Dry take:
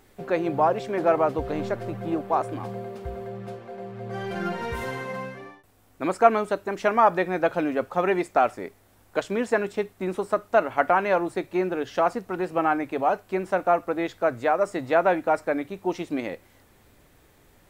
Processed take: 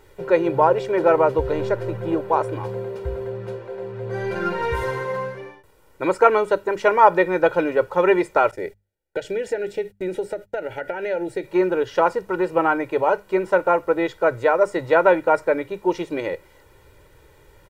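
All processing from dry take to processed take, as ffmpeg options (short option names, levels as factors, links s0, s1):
-filter_complex "[0:a]asettb=1/sr,asplit=3[s0][s1][s2];[s0]atrim=end=8.514[s3];[s1]atrim=start=8.51:end=11.45,asetpts=PTS-STARTPTS,afade=t=in:d=0.004:c=qsin,afade=t=out:st=2.936:d=0.004:c=qsin,acompressor=threshold=0.0447:ratio=4:attack=3.2:release=140:knee=1:detection=peak,asuperstop=centerf=1100:order=4:qfactor=1.7,agate=range=0.0316:threshold=0.00316:ratio=16:release=100:detection=peak[s4];[s2]atrim=start=11.446[s5];[s3][s4]acrossfade=d=0.004:c1=hsin:c2=qsin[s6];[s6][s5]acrossfade=d=0.004:c1=qsin:c2=hsin,highshelf=f=3800:g=-6.5,bandreject=f=50:t=h:w=6,bandreject=f=100:t=h:w=6,bandreject=f=150:t=h:w=6,bandreject=f=200:t=h:w=6,aecho=1:1:2.1:0.77,volume=1.58"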